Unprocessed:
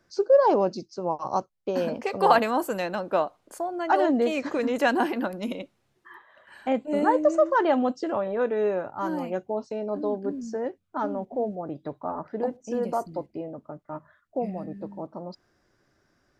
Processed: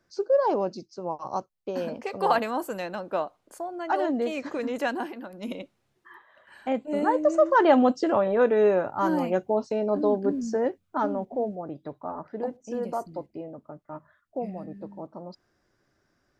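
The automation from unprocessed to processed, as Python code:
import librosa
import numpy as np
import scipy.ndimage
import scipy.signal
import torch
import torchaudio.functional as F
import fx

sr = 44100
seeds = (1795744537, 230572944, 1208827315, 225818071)

y = fx.gain(x, sr, db=fx.line((4.79, -4.0), (5.25, -12.0), (5.5, -2.0), (7.19, -2.0), (7.74, 4.5), (10.68, 4.5), (11.82, -3.0)))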